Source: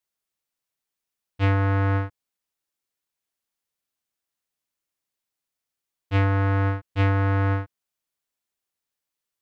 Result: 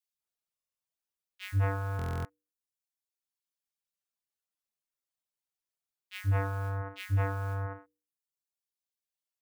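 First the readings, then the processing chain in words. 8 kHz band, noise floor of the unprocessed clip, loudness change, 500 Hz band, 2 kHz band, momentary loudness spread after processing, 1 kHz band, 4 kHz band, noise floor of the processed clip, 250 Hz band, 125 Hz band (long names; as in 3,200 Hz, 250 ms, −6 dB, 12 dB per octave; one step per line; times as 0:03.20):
can't be measured, below −85 dBFS, −10.0 dB, −9.5 dB, −10.0 dB, 13 LU, −9.5 dB, −7.5 dB, below −85 dBFS, −16.5 dB, −9.0 dB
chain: reverb reduction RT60 1.5 s
mains-hum notches 60/120/180/240/300/360/420/480 Hz
noise that follows the level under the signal 29 dB
three-band delay without the direct sound highs, lows, mids 130/200 ms, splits 260/2,000 Hz
buffer that repeats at 0:00.54/0:01.97, samples 1,024, times 11
level −5 dB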